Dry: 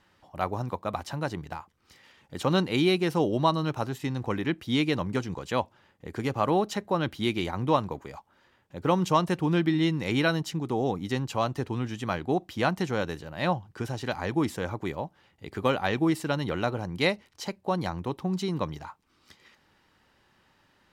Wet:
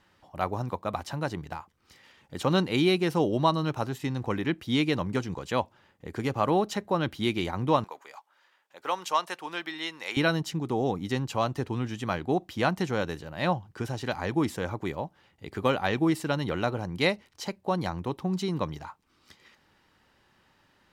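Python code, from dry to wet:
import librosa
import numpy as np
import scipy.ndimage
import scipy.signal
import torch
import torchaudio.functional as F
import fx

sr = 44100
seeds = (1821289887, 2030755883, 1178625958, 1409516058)

y = fx.highpass(x, sr, hz=800.0, slope=12, at=(7.84, 10.17))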